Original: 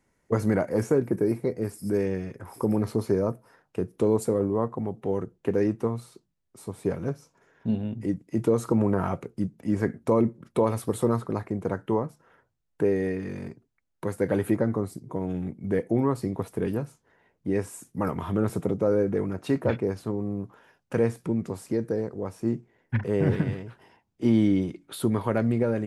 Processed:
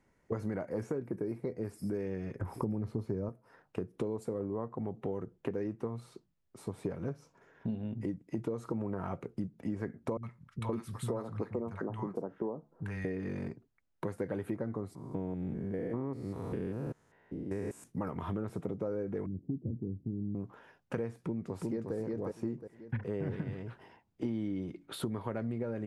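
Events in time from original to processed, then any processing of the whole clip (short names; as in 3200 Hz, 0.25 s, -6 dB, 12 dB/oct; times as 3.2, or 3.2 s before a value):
2.41–3.29 low shelf 280 Hz +12 dB
10.17–13.05 three bands offset in time lows, highs, mids 60/520 ms, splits 160/1000 Hz
14.95–17.84 stepped spectrum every 0.2 s
19.26–20.35 inverse Chebyshev low-pass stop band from 1700 Hz, stop band 80 dB
21.24–21.95 echo throw 0.36 s, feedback 30%, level -3.5 dB
whole clip: high shelf 5700 Hz -11 dB; compressor 6:1, threshold -33 dBFS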